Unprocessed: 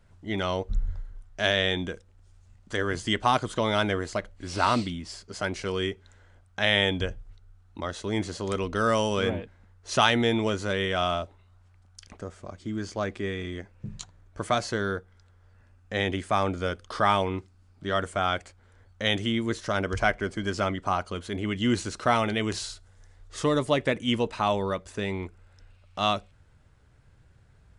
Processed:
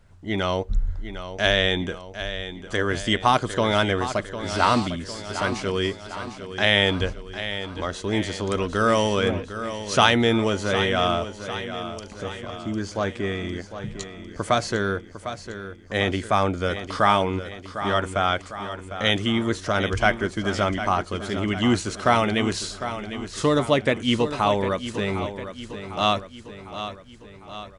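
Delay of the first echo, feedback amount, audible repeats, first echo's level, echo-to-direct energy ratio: 753 ms, 55%, 5, −11.0 dB, −9.5 dB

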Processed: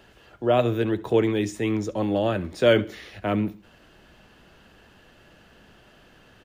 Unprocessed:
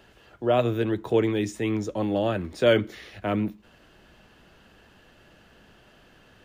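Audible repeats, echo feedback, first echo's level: 2, 35%, −20.0 dB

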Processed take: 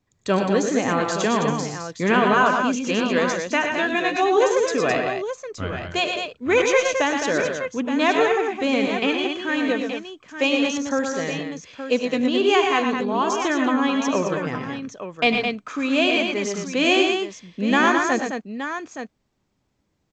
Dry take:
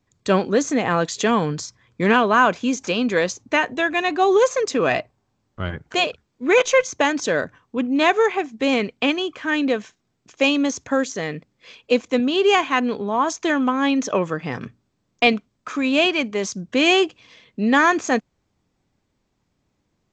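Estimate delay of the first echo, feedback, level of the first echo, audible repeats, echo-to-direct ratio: 74 ms, repeats not evenly spaced, −17.5 dB, 4, −1.5 dB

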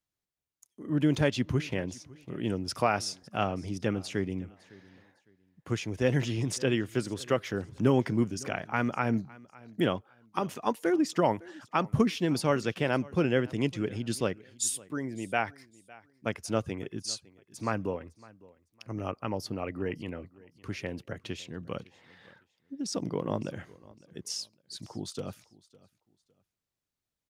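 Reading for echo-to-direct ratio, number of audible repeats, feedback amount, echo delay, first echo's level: −22.0 dB, 2, 26%, 557 ms, −22.5 dB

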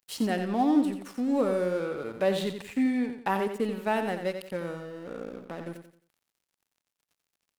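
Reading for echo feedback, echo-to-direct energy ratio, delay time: 34%, −7.5 dB, 88 ms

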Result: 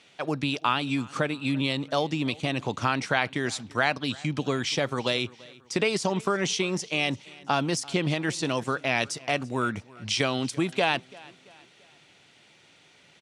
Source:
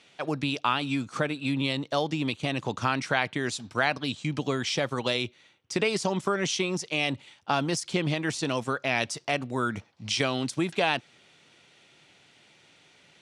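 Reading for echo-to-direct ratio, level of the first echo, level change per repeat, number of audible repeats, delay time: −21.5 dB, −22.5 dB, −7.5 dB, 2, 338 ms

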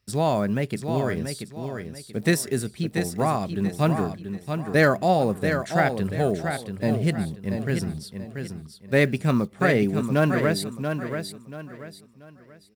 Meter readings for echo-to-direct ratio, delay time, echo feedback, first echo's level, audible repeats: −6.5 dB, 684 ms, 31%, −7.0 dB, 3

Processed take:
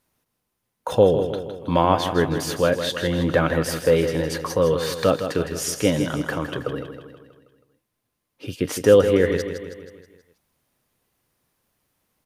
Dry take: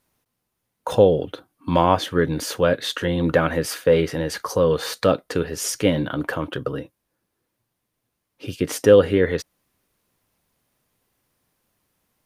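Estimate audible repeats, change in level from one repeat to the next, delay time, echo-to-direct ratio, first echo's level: 5, −5.5 dB, 160 ms, −7.5 dB, −9.0 dB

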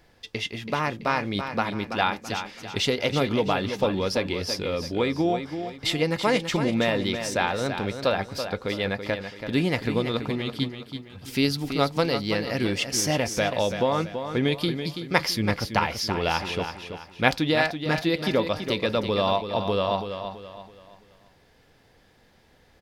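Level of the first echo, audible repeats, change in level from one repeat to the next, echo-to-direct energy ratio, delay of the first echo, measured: −8.5 dB, 4, −8.5 dB, −8.0 dB, 331 ms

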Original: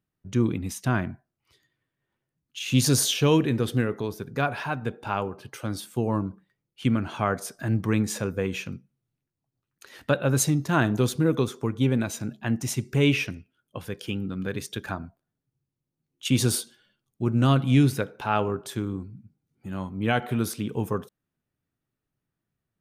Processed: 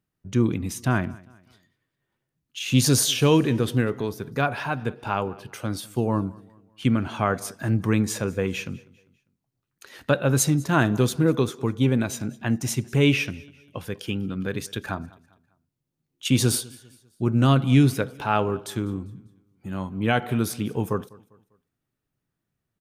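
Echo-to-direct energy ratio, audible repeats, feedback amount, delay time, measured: −22.5 dB, 2, 40%, 199 ms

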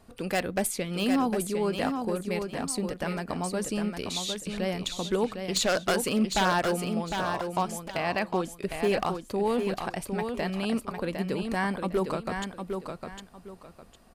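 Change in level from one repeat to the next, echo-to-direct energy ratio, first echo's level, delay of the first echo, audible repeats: −11.5 dB, −5.5 dB, −6.0 dB, 756 ms, 2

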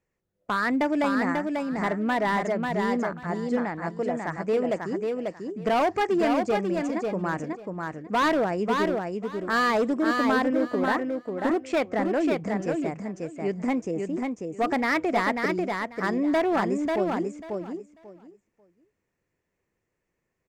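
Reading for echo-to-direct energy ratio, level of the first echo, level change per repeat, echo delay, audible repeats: −4.0 dB, −4.0 dB, −15.0 dB, 542 ms, 3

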